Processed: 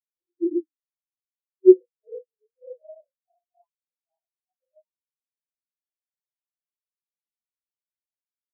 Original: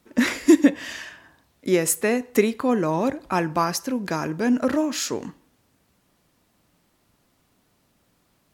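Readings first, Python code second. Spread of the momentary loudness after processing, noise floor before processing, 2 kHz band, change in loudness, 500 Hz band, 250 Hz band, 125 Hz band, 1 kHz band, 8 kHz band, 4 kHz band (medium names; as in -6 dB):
14 LU, -67 dBFS, under -40 dB, +2.5 dB, +0.5 dB, -6.0 dB, under -40 dB, under -40 dB, under -40 dB, under -40 dB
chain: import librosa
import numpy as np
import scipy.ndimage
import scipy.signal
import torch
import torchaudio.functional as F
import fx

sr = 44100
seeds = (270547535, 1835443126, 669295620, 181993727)

y = fx.phase_scramble(x, sr, seeds[0], window_ms=200)
y = fx.low_shelf_res(y, sr, hz=310.0, db=-10.5, q=1.5)
y = fx.filter_sweep_highpass(y, sr, from_hz=350.0, to_hz=740.0, start_s=1.39, end_s=3.58, q=6.4)
y = fx.phaser_stages(y, sr, stages=12, low_hz=250.0, high_hz=4000.0, hz=0.8, feedback_pct=35)
y = fx.spectral_expand(y, sr, expansion=4.0)
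y = F.gain(torch.from_numpy(y), -4.5).numpy()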